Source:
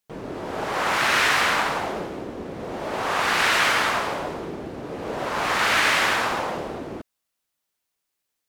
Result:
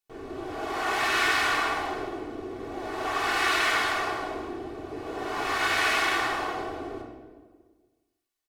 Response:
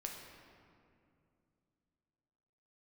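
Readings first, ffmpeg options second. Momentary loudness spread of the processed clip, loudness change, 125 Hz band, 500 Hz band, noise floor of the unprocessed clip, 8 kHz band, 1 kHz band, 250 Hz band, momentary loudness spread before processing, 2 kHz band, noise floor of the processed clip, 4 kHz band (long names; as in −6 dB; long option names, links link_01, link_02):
15 LU, −5.0 dB, −7.5 dB, −4.5 dB, −80 dBFS, −6.0 dB, −4.0 dB, −3.0 dB, 16 LU, −4.5 dB, −80 dBFS, −5.0 dB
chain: -filter_complex "[0:a]aecho=1:1:2.7:0.75[link_01];[1:a]atrim=start_sample=2205,asetrate=88200,aresample=44100[link_02];[link_01][link_02]afir=irnorm=-1:irlink=0,volume=1dB"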